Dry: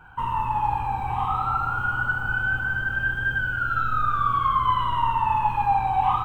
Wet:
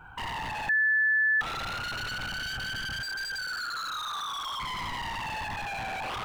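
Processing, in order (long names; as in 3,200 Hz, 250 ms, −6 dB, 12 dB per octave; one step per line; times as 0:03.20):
0:03.02–0:04.60: Bessel high-pass filter 550 Hz, order 2
brickwall limiter −21.5 dBFS, peak gain reduction 11 dB
wave folding −29.5 dBFS
0:00.69–0:01.41: beep over 1,740 Hz −21 dBFS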